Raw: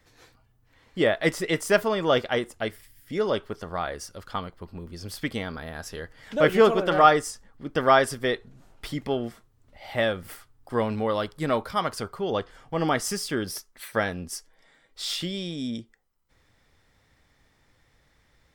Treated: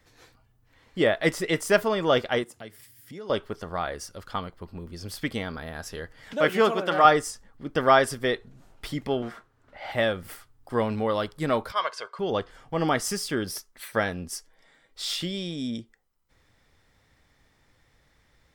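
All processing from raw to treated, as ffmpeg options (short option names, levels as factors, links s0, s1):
-filter_complex "[0:a]asettb=1/sr,asplit=3[s0][s1][s2];[s0]atrim=end=2.434[s3];[s1]atrim=start=2.43:end=3.3,asetpts=PTS-STARTPTS,afade=t=in:d=0.004:c=qsin,afade=t=out:st=0.866:d=0.004:c=qsin,bass=f=250:g=4,treble=f=4000:g=4,acompressor=threshold=0.00631:ratio=2.5:attack=3.2:release=140:knee=1:detection=peak,highpass=f=100:w=0.5412,highpass=f=100:w=1.3066[s4];[s2]atrim=start=3.296[s5];[s3][s4]acrossfade=d=0.004:c1=hsin:c2=qsin[s6];[s6][s5]acrossfade=d=0.004:c1=qsin:c2=hsin,asettb=1/sr,asplit=3[s7][s8][s9];[s7]atrim=end=6.334[s10];[s8]atrim=start=6.33:end=7.05,asetpts=PTS-STARTPTS,afade=t=in:d=0.004:c=qsin,afade=t=out:st=0.716:d=0.004:c=qsin,highpass=190,equalizer=f=410:w=1.2:g=-4.5[s11];[s9]atrim=start=7.046[s12];[s10][s11]acrossfade=d=0.004:c1=hsin:c2=qsin[s13];[s13][s12]acrossfade=d=0.004:c1=qsin:c2=hsin,asettb=1/sr,asplit=3[s14][s15][s16];[s14]atrim=end=9.224[s17];[s15]atrim=start=9.22:end=9.92,asetpts=PTS-STARTPTS,afade=t=in:d=0.004:c=qsin,afade=t=out:st=0.696:d=0.004:c=qsin,equalizer=f=1500:w=3.3:g=7.5,asplit=2[s18][s19];[s19]highpass=f=720:p=1,volume=6.31,asoftclip=type=tanh:threshold=0.0891[s20];[s18][s20]amix=inputs=2:normalize=0,lowpass=f=1400:p=1,volume=0.501,asoftclip=type=hard:threshold=0.0355[s21];[s16]atrim=start=9.916[s22];[s17][s21]acrossfade=d=0.004:c1=hsin:c2=qsin[s23];[s23][s22]acrossfade=d=0.004:c1=qsin:c2=hsin,asettb=1/sr,asplit=3[s24][s25][s26];[s24]atrim=end=11.724[s27];[s25]atrim=start=11.72:end=12.19,asetpts=PTS-STARTPTS,afade=t=in:d=0.004:c=qsin,afade=t=out:st=0.466:d=0.004:c=qsin,highpass=720,lowpass=5200,aecho=1:1:1.9:0.62,atrim=end_sample=20727[s28];[s26]atrim=start=12.186[s29];[s27][s28]acrossfade=d=0.004:c1=hsin:c2=qsin[s30];[s30][s29]acrossfade=d=0.004:c1=qsin:c2=hsin"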